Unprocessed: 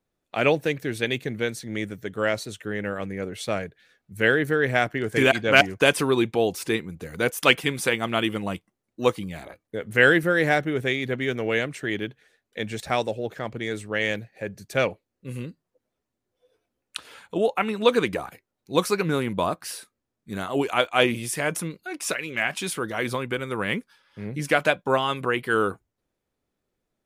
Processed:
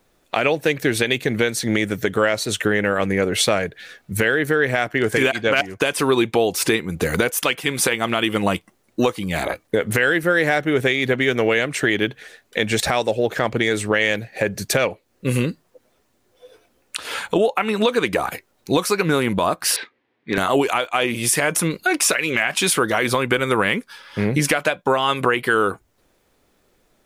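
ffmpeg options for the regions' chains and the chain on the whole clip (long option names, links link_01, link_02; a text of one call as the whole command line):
ffmpeg -i in.wav -filter_complex "[0:a]asettb=1/sr,asplit=3[link_01][link_02][link_03];[link_01]atrim=end=19.764[link_04];[link_02]atrim=start=19.76:end=20.38,asetpts=PTS-STARTPTS,afade=type=in:duration=0.004:curve=qsin,afade=type=out:start_time=0.616:duration=0.004:curve=qsin,highpass=190,equalizer=frequency=200:width_type=q:width=4:gain=-9,equalizer=frequency=620:width_type=q:width=4:gain=-7,equalizer=frequency=1300:width_type=q:width=4:gain=-6,equalizer=frequency=2000:width_type=q:width=4:gain=6,lowpass=frequency=3400:width=0.5412,lowpass=frequency=3400:width=1.3066,volume=27.5dB,asoftclip=hard,volume=-27.5dB[link_05];[link_03]atrim=start=20.376[link_06];[link_04][link_05]acrossfade=duration=0.004:curve1=hsin:curve2=qsin[link_07];[link_07][link_06]acrossfade=duration=0.004:curve1=qsin:curve2=hsin,equalizer=frequency=120:width=0.42:gain=-5.5,acompressor=threshold=-35dB:ratio=6,alimiter=level_in=25dB:limit=-1dB:release=50:level=0:latency=1,volume=-5dB" out.wav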